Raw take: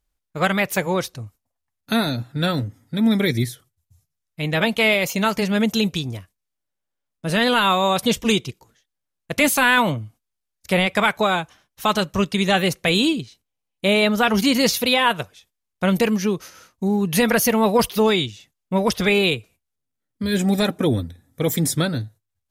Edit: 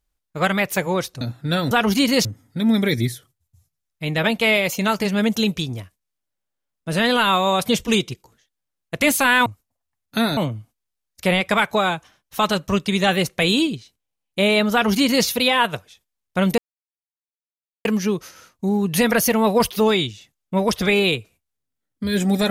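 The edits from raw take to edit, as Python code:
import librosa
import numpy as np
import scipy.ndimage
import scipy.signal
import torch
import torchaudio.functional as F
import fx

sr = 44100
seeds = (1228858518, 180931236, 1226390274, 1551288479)

y = fx.edit(x, sr, fx.move(start_s=1.21, length_s=0.91, to_s=9.83),
    fx.duplicate(start_s=14.18, length_s=0.54, to_s=2.62),
    fx.insert_silence(at_s=16.04, length_s=1.27), tone=tone)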